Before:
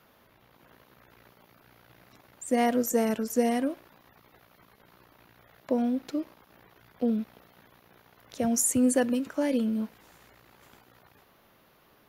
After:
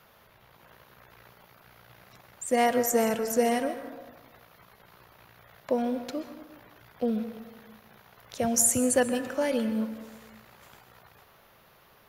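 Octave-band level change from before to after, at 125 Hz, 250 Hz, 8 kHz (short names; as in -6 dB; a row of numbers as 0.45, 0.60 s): +0.5, -3.0, +3.5 dB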